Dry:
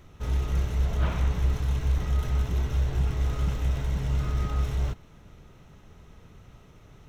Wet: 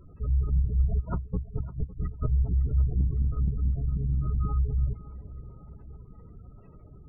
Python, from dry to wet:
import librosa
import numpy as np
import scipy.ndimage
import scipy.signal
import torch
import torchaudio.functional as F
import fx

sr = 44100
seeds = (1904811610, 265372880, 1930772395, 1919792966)

p1 = fx.spec_gate(x, sr, threshold_db=-20, keep='strong')
p2 = fx.over_compress(p1, sr, threshold_db=-31.0, ratio=-0.5, at=(0.99, 2.26), fade=0.02)
p3 = p2 + fx.echo_feedback(p2, sr, ms=557, feedback_pct=58, wet_db=-16, dry=0)
p4 = fx.transformer_sat(p3, sr, knee_hz=85.0, at=(2.86, 4.38))
y = p4 * librosa.db_to_amplitude(1.5)